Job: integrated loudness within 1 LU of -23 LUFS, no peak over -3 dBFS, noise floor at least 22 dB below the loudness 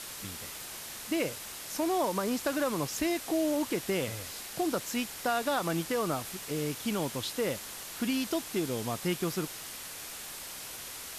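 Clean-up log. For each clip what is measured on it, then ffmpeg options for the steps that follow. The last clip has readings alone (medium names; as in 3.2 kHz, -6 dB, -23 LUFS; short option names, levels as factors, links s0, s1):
noise floor -43 dBFS; noise floor target -55 dBFS; loudness -33.0 LUFS; peak level -17.0 dBFS; loudness target -23.0 LUFS
-> -af "afftdn=nr=12:nf=-43"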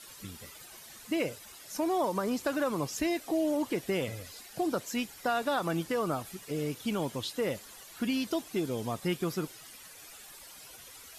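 noise floor -51 dBFS; noise floor target -55 dBFS
-> -af "afftdn=nr=6:nf=-51"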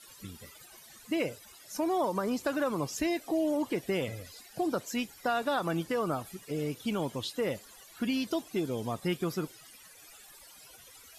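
noise floor -54 dBFS; noise floor target -55 dBFS
-> -af "afftdn=nr=6:nf=-54"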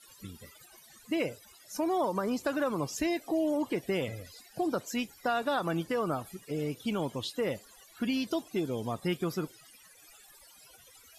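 noise floor -57 dBFS; loudness -33.0 LUFS; peak level -18.0 dBFS; loudness target -23.0 LUFS
-> -af "volume=3.16"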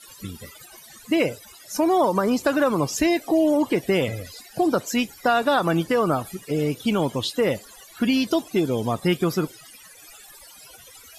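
loudness -23.0 LUFS; peak level -8.0 dBFS; noise floor -47 dBFS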